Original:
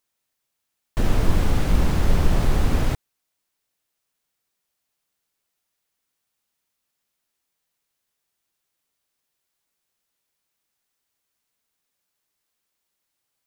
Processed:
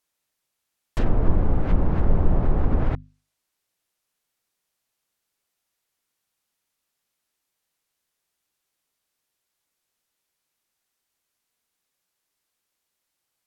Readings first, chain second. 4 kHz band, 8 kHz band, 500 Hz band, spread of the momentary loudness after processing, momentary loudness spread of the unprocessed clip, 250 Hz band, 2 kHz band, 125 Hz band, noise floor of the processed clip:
under -10 dB, under -20 dB, -0.5 dB, 6 LU, 6 LU, -0.5 dB, -7.5 dB, -1.0 dB, -81 dBFS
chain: hum notches 50/100/150/200/250 Hz; low-pass that closes with the level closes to 950 Hz, closed at -13.5 dBFS

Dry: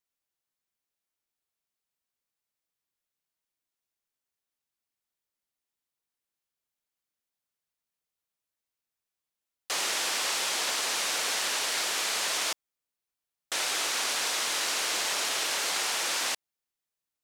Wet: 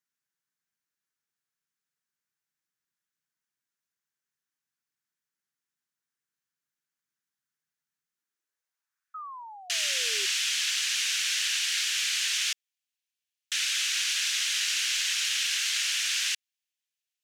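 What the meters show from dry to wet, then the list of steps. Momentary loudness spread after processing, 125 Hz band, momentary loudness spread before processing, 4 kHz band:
7 LU, no reading, 3 LU, +3.0 dB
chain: high-pass sweep 140 Hz -> 2.8 kHz, 8.02–9.38 s; painted sound fall, 9.14–10.26 s, 380–1300 Hz -38 dBFS; fifteen-band graphic EQ 630 Hz -9 dB, 1.6 kHz +10 dB, 6.3 kHz +5 dB; trim -4 dB

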